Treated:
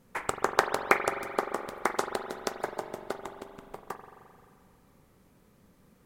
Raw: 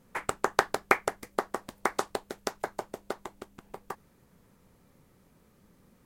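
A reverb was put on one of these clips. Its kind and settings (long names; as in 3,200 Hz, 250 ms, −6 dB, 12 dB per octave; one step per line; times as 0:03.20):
spring reverb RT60 2.3 s, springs 43 ms, chirp 35 ms, DRR 6.5 dB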